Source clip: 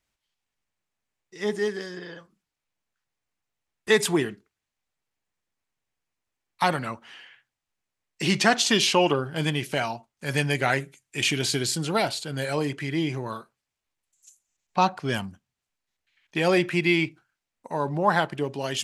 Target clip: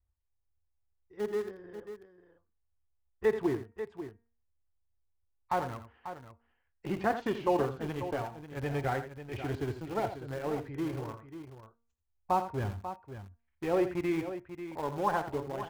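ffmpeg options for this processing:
ffmpeg -i in.wav -filter_complex "[0:a]lowpass=1000,lowshelf=frequency=110:width_type=q:width=3:gain=13.5,bandreject=frequency=620:width=12,bandreject=frequency=232.3:width_type=h:width=4,bandreject=frequency=464.6:width_type=h:width=4,bandreject=frequency=696.9:width_type=h:width=4,bandreject=frequency=929.2:width_type=h:width=4,bandreject=frequency=1161.5:width_type=h:width=4,bandreject=frequency=1393.8:width_type=h:width=4,bandreject=frequency=1626.1:width_type=h:width=4,bandreject=frequency=1858.4:width_type=h:width=4,bandreject=frequency=2090.7:width_type=h:width=4,bandreject=frequency=2323:width_type=h:width=4,bandreject=frequency=2555.3:width_type=h:width=4,bandreject=frequency=2787.6:width_type=h:width=4,asplit=2[link_01][link_02];[link_02]aeval=exprs='val(0)*gte(abs(val(0)),0.0422)':channel_layout=same,volume=-5dB[link_03];[link_01][link_03]amix=inputs=2:normalize=0,atempo=1.2,aecho=1:1:57|84|541:0.106|0.282|0.282,volume=-8dB" out.wav

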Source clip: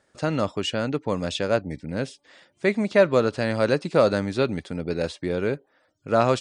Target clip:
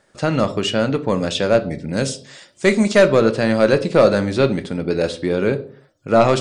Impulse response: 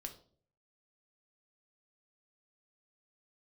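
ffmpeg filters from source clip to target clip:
-filter_complex "[0:a]asettb=1/sr,asplit=3[link_01][link_02][link_03];[link_01]atrim=end=1.934[link_04];[link_02]atrim=start=1.93:end=3.08,asetpts=PTS-STARTPTS,afade=type=in:duration=0.004:curve=qsin,afade=type=out:start_time=1.146:duration=0.004:curve=qsin,equalizer=frequency=7500:width=0.78:gain=13.5[link_05];[link_03]atrim=start=3.076[link_06];[link_04][link_05]acrossfade=duration=0.004:curve1=hsin:curve2=qsin[link_07];[link_07][link_06]acrossfade=duration=0.004:curve1=qsin:curve2=hsin,asoftclip=type=tanh:threshold=-9.5dB,asplit=2[link_08][link_09];[1:a]atrim=start_sample=2205,afade=type=out:start_time=0.39:duration=0.01,atrim=end_sample=17640[link_10];[link_09][link_10]afir=irnorm=-1:irlink=0,volume=7.5dB[link_11];[link_08][link_11]amix=inputs=2:normalize=0,volume=-1dB"

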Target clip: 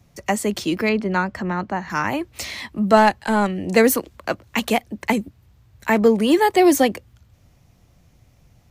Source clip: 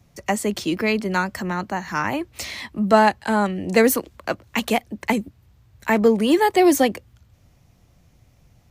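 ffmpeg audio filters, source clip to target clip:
ffmpeg -i in.wav -filter_complex "[0:a]asettb=1/sr,asplit=3[link_01][link_02][link_03];[link_01]atrim=end=0.894[link_04];[link_02]atrim=start=0.89:end=1.9,asetpts=PTS-STARTPTS,afade=type=in:duration=0.004:curve=qsin,afade=type=out:start_time=1.006:duration=0.004:curve=qsin,aemphasis=mode=reproduction:type=75fm[link_05];[link_03]atrim=start=1.896[link_06];[link_04][link_05]acrossfade=duration=0.004:curve1=hsin:curve2=qsin[link_07];[link_07][link_06]acrossfade=duration=0.004:curve1=qsin:curve2=hsin,asettb=1/sr,asplit=3[link_08][link_09][link_10];[link_08]atrim=end=2.974[link_11];[link_09]atrim=start=2.97:end=3.47,asetpts=PTS-STARTPTS,afade=type=in:duration=0.004:curve=qsin,afade=type=out:start_time=0.496:duration=0.004:curve=qsin,aeval=exprs='0.562*(cos(1*acos(clip(val(0)/0.562,-1,1)))-cos(1*PI/2))+0.0224*(cos(6*acos(clip(val(0)/0.562,-1,1)))-cos(6*PI/2))':channel_layout=same[link_12];[link_10]atrim=start=3.466[link_13];[link_11][link_12]acrossfade=duration=0.004:curve1=hsin:curve2=qsin[link_14];[link_14][link_13]acrossfade=duration=0.004:curve1=qsin:curve2=hsin,volume=1dB" out.wav

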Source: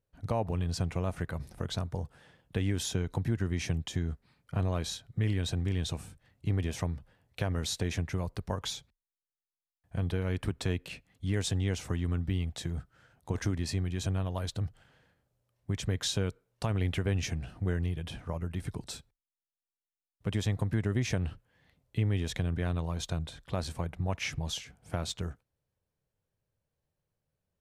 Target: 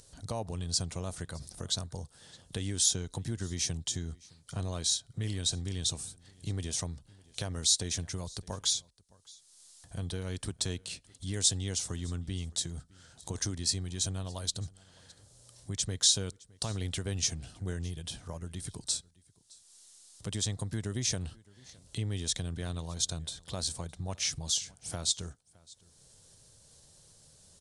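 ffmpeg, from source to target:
ffmpeg -i in.wav -filter_complex "[0:a]acompressor=mode=upward:threshold=-37dB:ratio=2.5,aexciter=amount=4.9:drive=7.2:freq=3500,aresample=22050,aresample=44100,asplit=2[link_01][link_02];[link_02]aecho=0:1:614:0.0631[link_03];[link_01][link_03]amix=inputs=2:normalize=0,volume=-5.5dB" out.wav

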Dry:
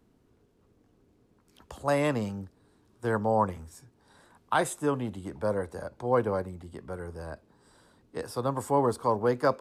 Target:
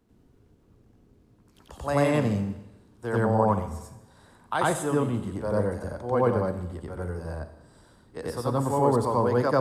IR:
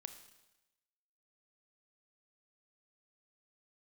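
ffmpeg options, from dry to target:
-filter_complex "[0:a]asplit=2[link_01][link_02];[1:a]atrim=start_sample=2205,lowshelf=frequency=210:gain=10,adelay=91[link_03];[link_02][link_03]afir=irnorm=-1:irlink=0,volume=7dB[link_04];[link_01][link_04]amix=inputs=2:normalize=0,volume=-2.5dB"

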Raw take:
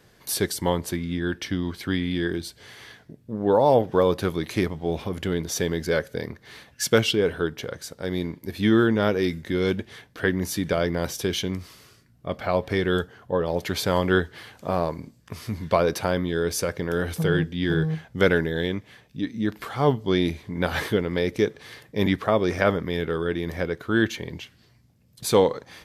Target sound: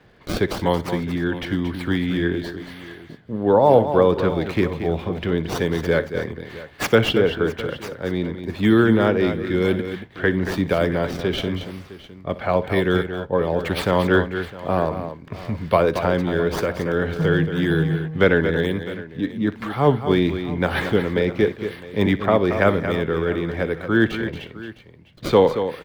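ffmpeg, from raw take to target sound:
ffmpeg -i in.wav -filter_complex "[0:a]acrossover=split=260|440|4000[link_01][link_02][link_03][link_04];[link_04]acrusher=samples=28:mix=1:aa=0.000001:lfo=1:lforange=44.8:lforate=1[link_05];[link_01][link_02][link_03][link_05]amix=inputs=4:normalize=0,aecho=1:1:61|228|658:0.133|0.335|0.133,volume=3.5dB" out.wav

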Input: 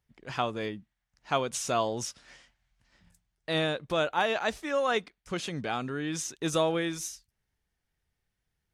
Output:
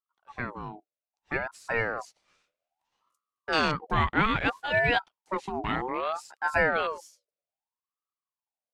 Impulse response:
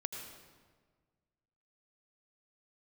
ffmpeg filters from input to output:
-af "dynaudnorm=framelen=340:gausssize=11:maxgain=7dB,afwtdn=0.0355,aeval=exprs='val(0)*sin(2*PI*870*n/s+870*0.4/0.62*sin(2*PI*0.62*n/s))':channel_layout=same,volume=-1dB"

